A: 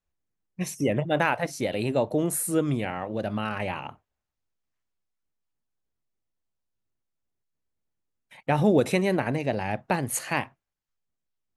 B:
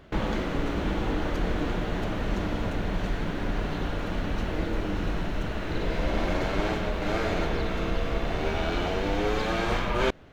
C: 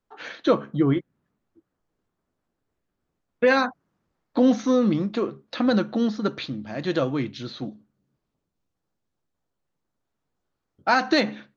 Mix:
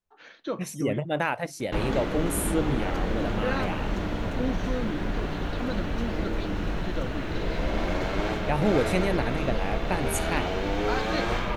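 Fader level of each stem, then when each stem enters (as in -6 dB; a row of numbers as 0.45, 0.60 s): -3.0, -0.5, -12.0 dB; 0.00, 1.60, 0.00 s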